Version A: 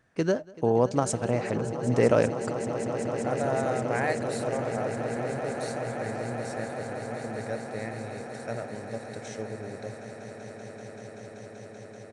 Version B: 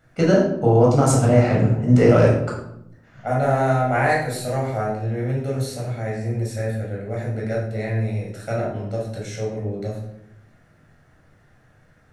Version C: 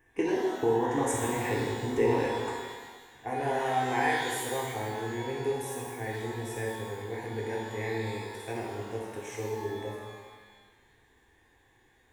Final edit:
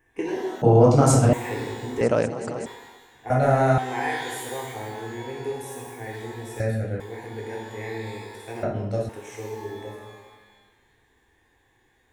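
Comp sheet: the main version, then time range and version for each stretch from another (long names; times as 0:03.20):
C
0:00.62–0:01.33: punch in from B
0:02.01–0:02.66: punch in from A
0:03.30–0:03.78: punch in from B
0:06.60–0:07.00: punch in from B
0:08.63–0:09.09: punch in from B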